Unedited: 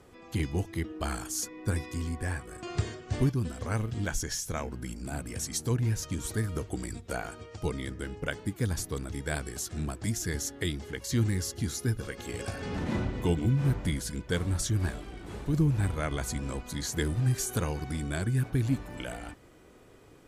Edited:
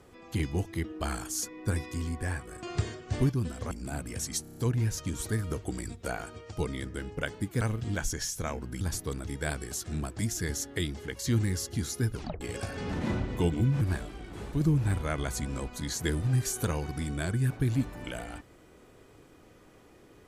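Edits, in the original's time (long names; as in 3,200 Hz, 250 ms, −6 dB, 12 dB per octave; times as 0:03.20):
0:03.71–0:04.91: move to 0:08.66
0:05.62: stutter 0.03 s, 6 plays
0:11.99: tape stop 0.27 s
0:13.66–0:14.74: remove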